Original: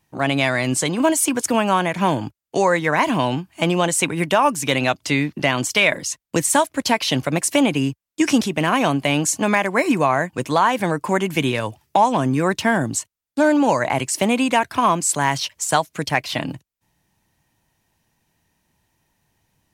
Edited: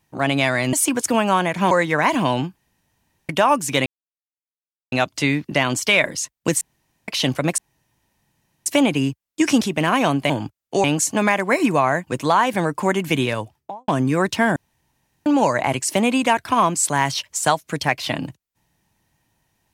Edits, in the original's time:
0.73–1.13 cut
2.11–2.65 move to 9.1
3.5–4.23 room tone
4.8 insert silence 1.06 s
6.49–6.96 room tone
7.46 insert room tone 1.08 s
11.54–12.14 studio fade out
12.82–13.52 room tone

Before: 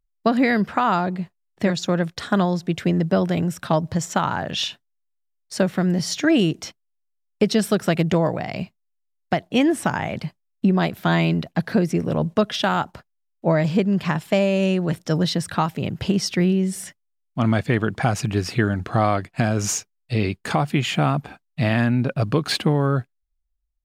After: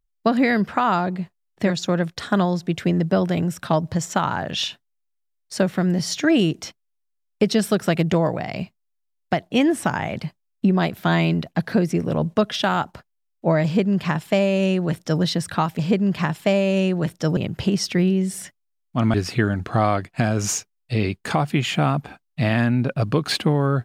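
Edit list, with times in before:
13.65–15.23 copy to 15.79
17.56–18.34 cut

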